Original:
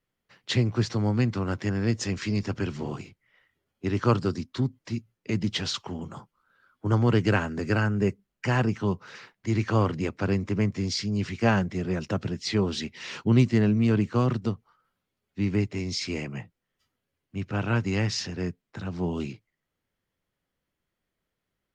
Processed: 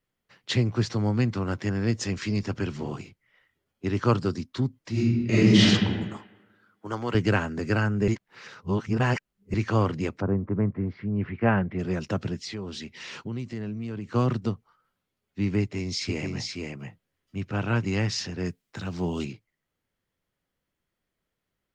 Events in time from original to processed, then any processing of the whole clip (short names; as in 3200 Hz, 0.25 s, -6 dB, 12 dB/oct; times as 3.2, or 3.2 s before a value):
4.91–5.64 reverb throw, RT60 1.4 s, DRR -11 dB
6.17–7.15 HPF 640 Hz 6 dB/oct
8.08–9.54 reverse
10.2–11.78 LPF 1200 Hz -> 2700 Hz 24 dB/oct
12.44–14.09 compressor 2.5:1, threshold -36 dBFS
15.61–17.85 echo 0.478 s -3.5 dB
18.45–19.25 high shelf 2700 Hz +9 dB